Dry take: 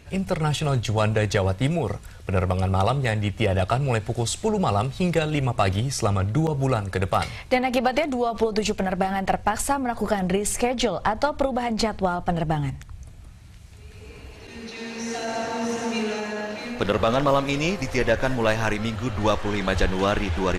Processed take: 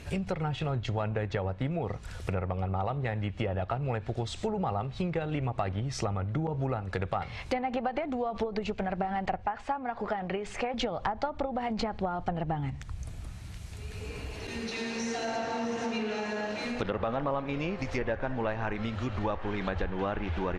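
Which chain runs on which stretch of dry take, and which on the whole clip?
9.46–10.74 LPF 2700 Hz + low shelf 300 Hz -11 dB
whole clip: treble ducked by the level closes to 2100 Hz, closed at -18.5 dBFS; dynamic EQ 810 Hz, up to +5 dB, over -39 dBFS, Q 7.6; compressor 3:1, threshold -36 dBFS; gain +3.5 dB

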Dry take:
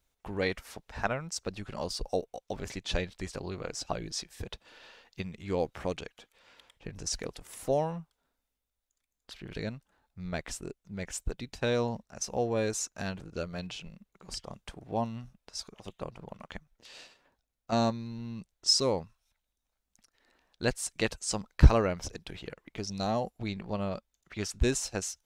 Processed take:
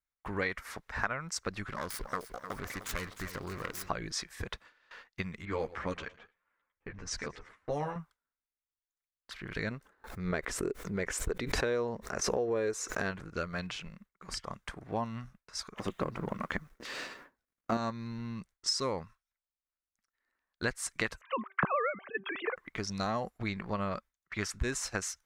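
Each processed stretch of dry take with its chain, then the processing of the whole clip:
1.63–3.89 self-modulated delay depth 0.46 ms + compressor 2:1, threshold -38 dBFS + lo-fi delay 0.305 s, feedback 55%, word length 10-bit, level -11.5 dB
5.45–7.96 low-pass opened by the level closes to 1600 Hz, open at -27 dBFS + feedback echo 0.112 s, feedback 35%, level -19.5 dB + ensemble effect
9.71–13.11 bell 420 Hz +12.5 dB 0.92 oct + backwards sustainer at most 80 dB/s
15.77–17.77 G.711 law mismatch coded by mu + bell 300 Hz +10 dB 2 oct
21.21–22.56 sine-wave speech + de-hum 387.9 Hz, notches 4
whole clip: gate with hold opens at -42 dBFS; band shelf 1500 Hz +9.5 dB 1.3 oct; compressor 5:1, threshold -29 dBFS

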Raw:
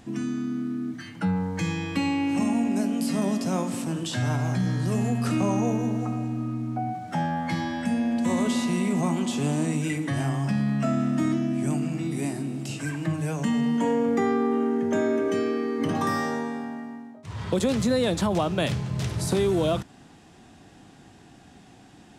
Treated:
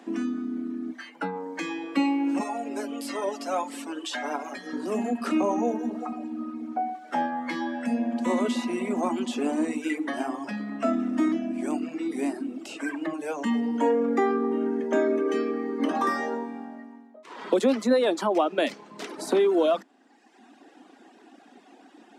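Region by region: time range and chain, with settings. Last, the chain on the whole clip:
2.4–4.73 bell 170 Hz -14.5 dB 1.6 oct + comb 7 ms, depth 70%
whole clip: steep high-pass 240 Hz 48 dB/oct; reverb removal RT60 1.2 s; high shelf 3500 Hz -11.5 dB; gain +4.5 dB

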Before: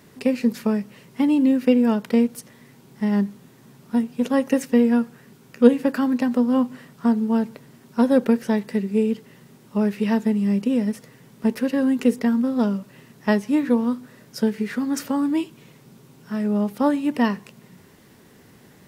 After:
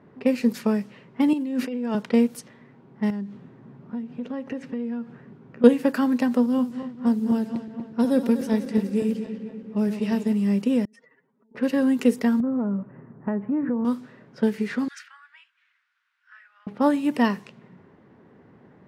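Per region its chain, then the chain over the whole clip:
1.33–1.95 HPF 160 Hz + negative-ratio compressor -26 dBFS
3.1–5.64 low shelf 340 Hz +6.5 dB + compressor 4:1, threshold -29 dBFS
6.46–10.33 regenerating reverse delay 0.122 s, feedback 78%, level -10 dB + bell 1100 Hz -7.5 dB 2.9 oct
10.85–11.55 spectral contrast raised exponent 2.1 + HPF 980 Hz + negative-ratio compressor -56 dBFS
12.4–13.85 LPF 1600 Hz 24 dB/oct + low shelf 270 Hz +7.5 dB + compressor 5:1, threshold -21 dBFS
14.88–16.67 elliptic high-pass 1500 Hz, stop band 80 dB + dynamic EQ 4300 Hz, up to -4 dB, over -49 dBFS, Q 0.72
whole clip: low shelf 76 Hz -10 dB; low-pass opened by the level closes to 1200 Hz, open at -19.5 dBFS

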